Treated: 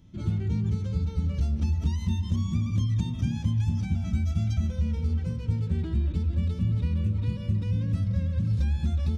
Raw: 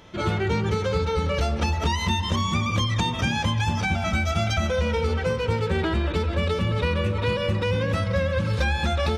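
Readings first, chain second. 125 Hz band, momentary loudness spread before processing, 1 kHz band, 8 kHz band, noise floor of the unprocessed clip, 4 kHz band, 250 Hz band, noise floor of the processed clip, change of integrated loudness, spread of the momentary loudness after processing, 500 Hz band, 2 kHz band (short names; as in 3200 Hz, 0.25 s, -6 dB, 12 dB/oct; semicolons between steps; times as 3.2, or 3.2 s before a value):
0.0 dB, 1 LU, -23.0 dB, under -10 dB, -29 dBFS, -18.0 dB, -3.0 dB, -34 dBFS, -3.5 dB, 2 LU, -20.0 dB, -22.0 dB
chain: EQ curve 130 Hz 0 dB, 270 Hz -4 dB, 450 Hz -21 dB, 1000 Hz -23 dB, 1500 Hz -24 dB, 3000 Hz -19 dB, 6600 Hz -13 dB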